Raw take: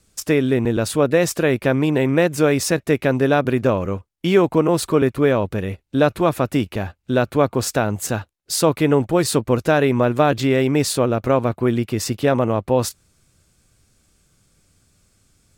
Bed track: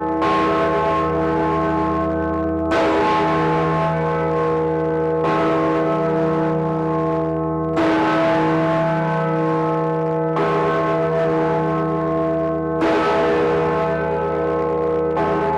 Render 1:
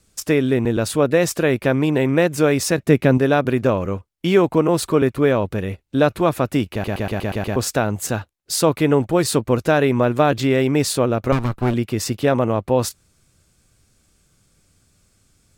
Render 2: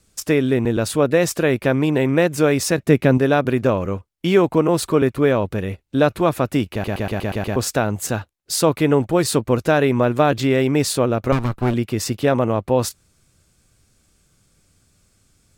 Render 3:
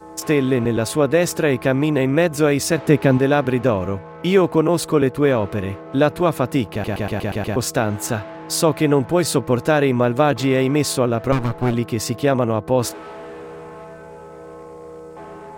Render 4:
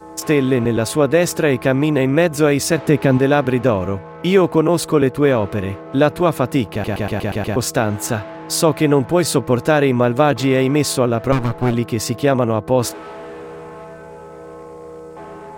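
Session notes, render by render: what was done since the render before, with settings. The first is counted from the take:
0:02.78–0:03.18: parametric band 170 Hz +7 dB 2 octaves; 0:06.72: stutter in place 0.12 s, 7 plays; 0:11.32–0:11.74: lower of the sound and its delayed copy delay 0.74 ms
no processing that can be heard
mix in bed track −18 dB
level +2 dB; brickwall limiter −2 dBFS, peak gain reduction 2.5 dB

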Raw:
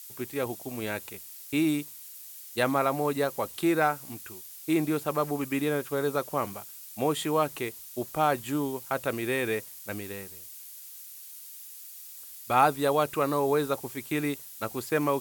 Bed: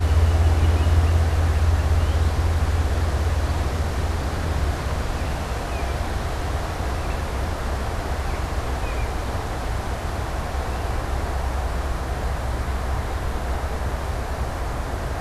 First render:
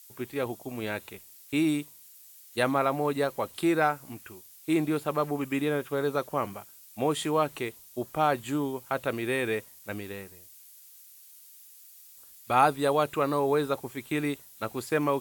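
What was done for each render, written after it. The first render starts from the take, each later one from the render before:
noise reduction from a noise print 7 dB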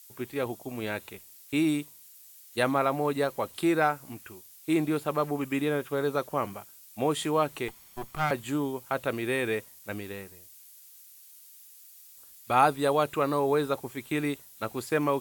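0:07.68–0:08.31: lower of the sound and its delayed copy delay 0.91 ms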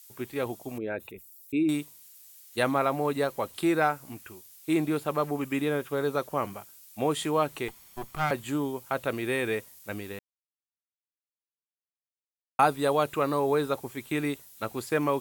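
0:00.78–0:01.69: spectral envelope exaggerated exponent 2
0:10.19–0:12.59: silence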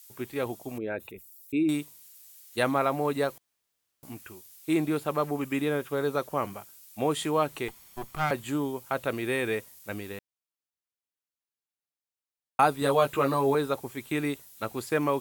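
0:03.38–0:04.03: fill with room tone
0:12.80–0:13.55: double-tracking delay 15 ms −3 dB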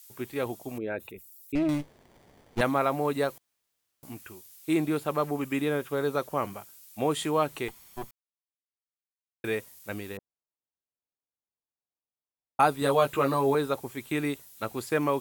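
0:01.55–0:02.61: windowed peak hold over 33 samples
0:08.11–0:09.44: silence
0:10.17–0:12.60: low-pass filter 1,000 Hz 24 dB per octave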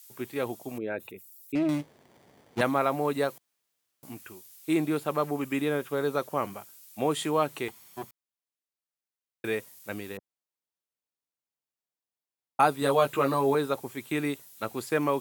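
high-pass filter 110 Hz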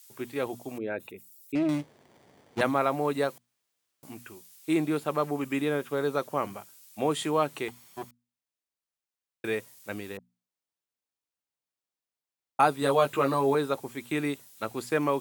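parametric band 13,000 Hz −6 dB 0.36 octaves
mains-hum notches 60/120/180/240 Hz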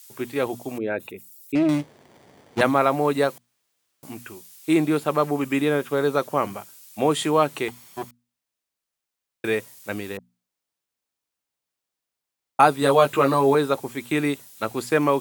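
level +6.5 dB

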